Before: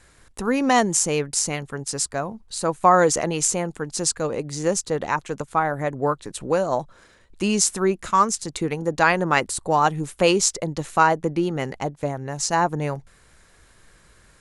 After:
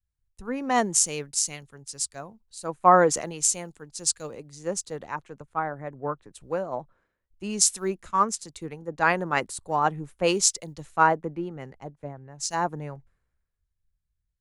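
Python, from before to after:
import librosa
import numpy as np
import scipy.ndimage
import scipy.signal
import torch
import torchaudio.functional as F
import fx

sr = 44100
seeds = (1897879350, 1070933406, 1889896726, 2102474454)

y = fx.quant_float(x, sr, bits=6)
y = fx.band_widen(y, sr, depth_pct=100)
y = F.gain(torch.from_numpy(y), -8.5).numpy()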